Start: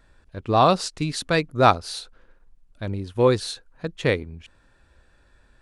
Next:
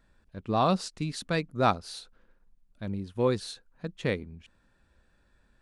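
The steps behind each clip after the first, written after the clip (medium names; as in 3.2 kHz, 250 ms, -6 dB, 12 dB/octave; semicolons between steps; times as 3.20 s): peaking EQ 200 Hz +8 dB 0.55 oct; trim -8.5 dB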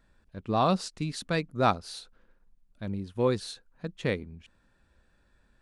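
no audible change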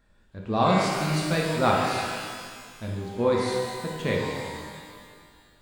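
pitch-shifted reverb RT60 1.9 s, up +12 st, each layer -8 dB, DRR -2.5 dB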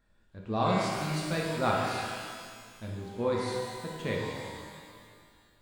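feedback comb 110 Hz, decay 1.6 s, mix 70%; trim +3.5 dB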